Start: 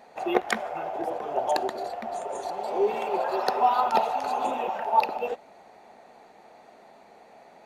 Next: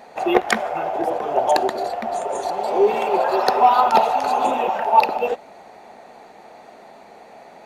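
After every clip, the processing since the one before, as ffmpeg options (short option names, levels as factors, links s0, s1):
-af "acontrast=72,volume=1.19"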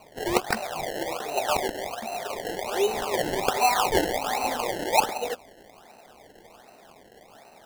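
-af "equalizer=f=3600:w=1.5:g=4.5,acrusher=samples=25:mix=1:aa=0.000001:lfo=1:lforange=25:lforate=1.3,volume=0.398"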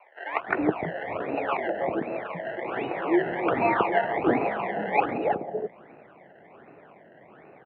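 -filter_complex "[0:a]acrossover=split=750[s0][s1];[s0]adelay=320[s2];[s2][s1]amix=inputs=2:normalize=0,highpass=f=170:t=q:w=0.5412,highpass=f=170:t=q:w=1.307,lowpass=f=2400:t=q:w=0.5176,lowpass=f=2400:t=q:w=0.7071,lowpass=f=2400:t=q:w=1.932,afreqshift=-54,volume=1.33"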